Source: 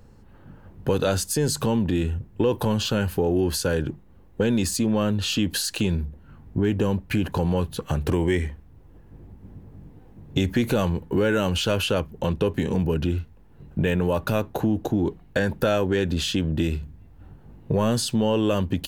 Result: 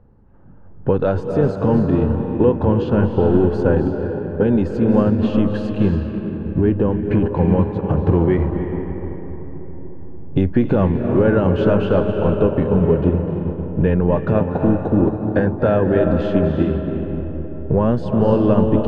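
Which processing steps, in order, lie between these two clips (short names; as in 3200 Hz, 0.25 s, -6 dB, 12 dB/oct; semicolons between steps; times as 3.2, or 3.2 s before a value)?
LPF 1200 Hz 12 dB/oct; reverb RT60 4.8 s, pre-delay 0.207 s, DRR 2.5 dB; upward expander 1.5:1, over -33 dBFS; gain +7 dB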